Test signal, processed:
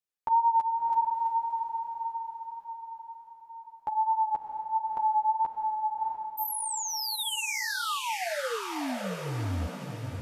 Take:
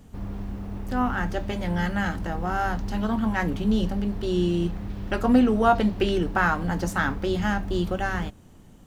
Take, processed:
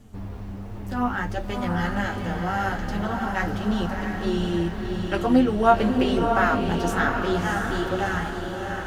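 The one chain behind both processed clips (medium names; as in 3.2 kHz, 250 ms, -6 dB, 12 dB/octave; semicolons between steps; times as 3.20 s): dynamic bell 190 Hz, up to -4 dB, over -38 dBFS, Q 1.3; flange 1.4 Hz, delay 8.4 ms, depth 3.8 ms, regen +3%; wow and flutter 23 cents; on a send: echo that smears into a reverb 676 ms, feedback 51%, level -4 dB; on the sum: trim +3 dB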